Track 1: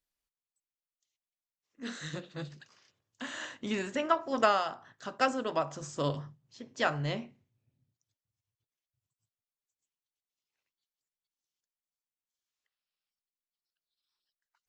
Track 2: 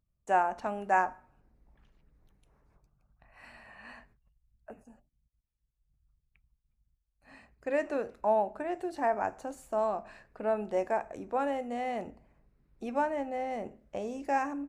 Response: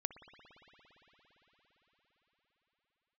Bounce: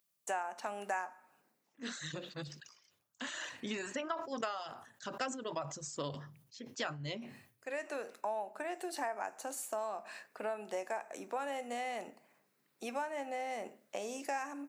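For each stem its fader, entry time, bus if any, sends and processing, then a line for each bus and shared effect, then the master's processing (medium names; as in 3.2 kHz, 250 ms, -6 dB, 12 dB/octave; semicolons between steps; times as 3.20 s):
-2.0 dB, 0.00 s, no send, reverb removal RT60 1.3 s; treble shelf 2.8 kHz +5 dB; decay stretcher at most 94 dB/s
+2.0 dB, 0.00 s, no send, high-pass 150 Hz 24 dB/octave; tilt EQ +3.5 dB/octave; auto duck -10 dB, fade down 0.30 s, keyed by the first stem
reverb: none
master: bass shelf 82 Hz -11.5 dB; compression 4:1, threshold -36 dBFS, peak gain reduction 14.5 dB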